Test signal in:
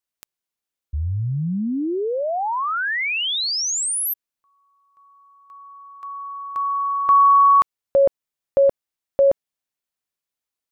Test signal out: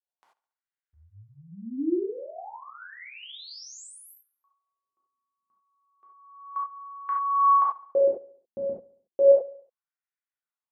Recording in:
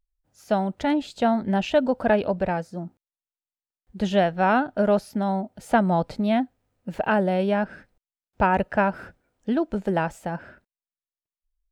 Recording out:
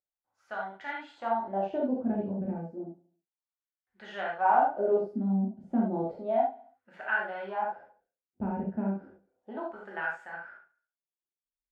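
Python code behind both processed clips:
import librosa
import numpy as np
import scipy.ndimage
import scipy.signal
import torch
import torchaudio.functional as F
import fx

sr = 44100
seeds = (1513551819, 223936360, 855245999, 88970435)

y = fx.wah_lfo(x, sr, hz=0.32, low_hz=210.0, high_hz=1700.0, q=2.9)
y = fx.echo_feedback(y, sr, ms=70, feedback_pct=52, wet_db=-20.0)
y = fx.rev_gated(y, sr, seeds[0], gate_ms=110, shape='flat', drr_db=-4.0)
y = y * librosa.db_to_amplitude(-5.0)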